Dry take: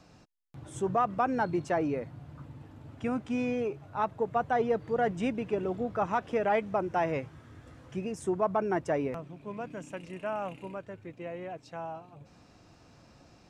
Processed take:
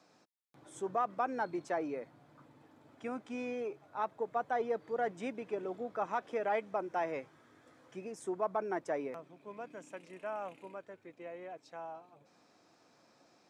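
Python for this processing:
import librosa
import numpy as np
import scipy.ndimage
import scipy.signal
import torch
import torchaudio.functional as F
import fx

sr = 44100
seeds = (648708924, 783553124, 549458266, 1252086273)

y = scipy.signal.sosfilt(scipy.signal.butter(2, 300.0, 'highpass', fs=sr, output='sos'), x)
y = fx.notch(y, sr, hz=2800.0, q=11.0)
y = y * 10.0 ** (-5.5 / 20.0)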